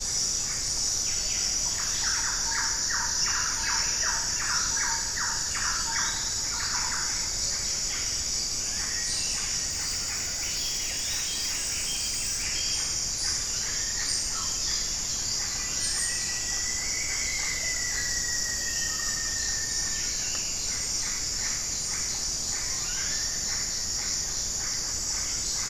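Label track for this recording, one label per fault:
9.690000	12.450000	clipped -25.5 dBFS

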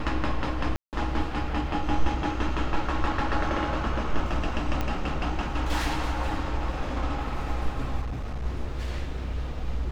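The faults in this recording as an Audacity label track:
0.760000	0.930000	dropout 168 ms
4.810000	4.810000	pop -14 dBFS
8.010000	8.460000	clipped -27.5 dBFS

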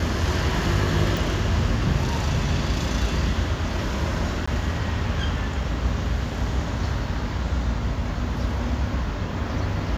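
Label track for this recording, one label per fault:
1.170000	1.170000	pop
4.460000	4.470000	dropout 15 ms

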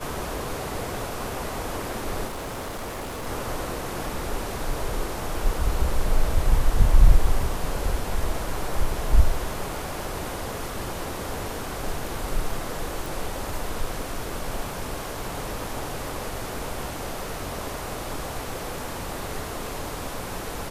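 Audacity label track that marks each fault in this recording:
2.270000	3.270000	clipped -29.5 dBFS
13.060000	13.060000	pop

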